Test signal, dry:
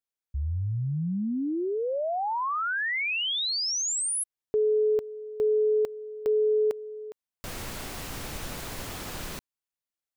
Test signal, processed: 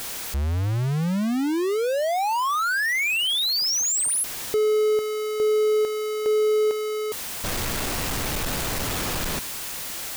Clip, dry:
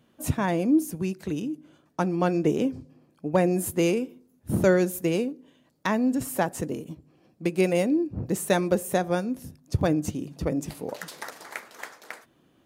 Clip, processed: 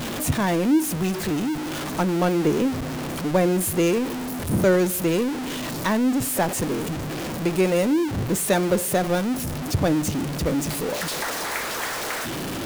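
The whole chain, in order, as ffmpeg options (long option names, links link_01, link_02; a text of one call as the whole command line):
ffmpeg -i in.wav -af "aeval=exprs='val(0)+0.5*0.0668*sgn(val(0))':channel_layout=same" out.wav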